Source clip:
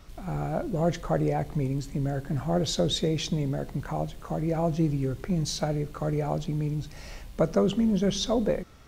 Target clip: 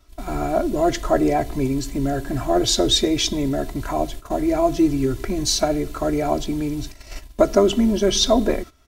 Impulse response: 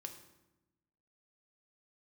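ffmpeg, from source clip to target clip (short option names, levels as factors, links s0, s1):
-af "agate=range=0.178:threshold=0.0112:ratio=16:detection=peak,highshelf=f=5100:g=6,aecho=1:1:3:0.93,volume=2"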